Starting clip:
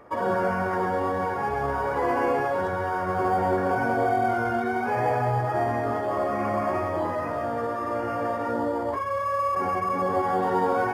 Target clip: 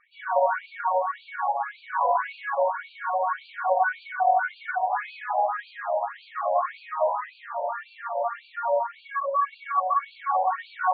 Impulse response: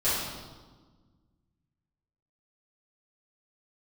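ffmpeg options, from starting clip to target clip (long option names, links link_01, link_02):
-filter_complex "[0:a]acrusher=bits=6:mode=log:mix=0:aa=0.000001[link_01];[1:a]atrim=start_sample=2205,afade=type=out:start_time=0.16:duration=0.01,atrim=end_sample=7497[link_02];[link_01][link_02]afir=irnorm=-1:irlink=0,afftfilt=real='re*between(b*sr/1024,700*pow(3300/700,0.5+0.5*sin(2*PI*1.8*pts/sr))/1.41,700*pow(3300/700,0.5+0.5*sin(2*PI*1.8*pts/sr))*1.41)':imag='im*between(b*sr/1024,700*pow(3300/700,0.5+0.5*sin(2*PI*1.8*pts/sr))/1.41,700*pow(3300/700,0.5+0.5*sin(2*PI*1.8*pts/sr))*1.41)':win_size=1024:overlap=0.75,volume=-6dB"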